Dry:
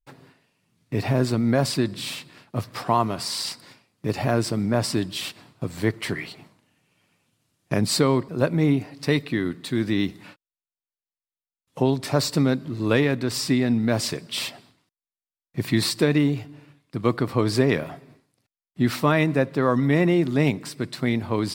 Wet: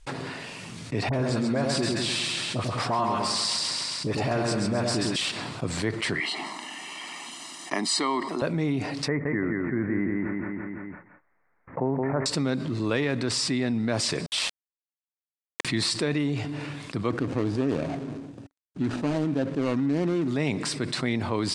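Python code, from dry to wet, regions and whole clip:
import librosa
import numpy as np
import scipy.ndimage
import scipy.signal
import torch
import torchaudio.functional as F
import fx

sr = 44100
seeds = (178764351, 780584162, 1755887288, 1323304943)

y = fx.chain(x, sr, fx.highpass(hz=47.0, slope=12),
    fx.dispersion(late='highs', ms=44.0, hz=1200.0),
    fx.echo_split(split_hz=1000.0, low_ms=99, high_ms=134, feedback_pct=52, wet_db=-4), at=(1.09, 5.16))
y = fx.chain(y, sr, fx.highpass(hz=290.0, slope=24),
    fx.comb(ms=1.0, depth=0.81), at=(6.2, 8.42))
y = fx.chain(y, sr, fx.steep_lowpass(hz=2100.0, slope=72),
    fx.echo_feedback(ms=170, feedback_pct=38, wet_db=-5.5), at=(9.08, 12.26))
y = fx.chain(y, sr, fx.highpass(hz=540.0, slope=24),
    fx.sample_gate(floor_db=-31.0), at=(14.26, 15.65))
y = fx.chain(y, sr, fx.median_filter(points=41),
    fx.peak_eq(hz=280.0, db=8.0, octaves=0.26),
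    fx.notch(hz=2000.0, q=25.0), at=(17.1, 20.28))
y = scipy.signal.sosfilt(scipy.signal.butter(6, 9400.0, 'lowpass', fs=sr, output='sos'), y)
y = fx.low_shelf(y, sr, hz=350.0, db=-4.5)
y = fx.env_flatten(y, sr, amount_pct=70)
y = y * 10.0 ** (-7.5 / 20.0)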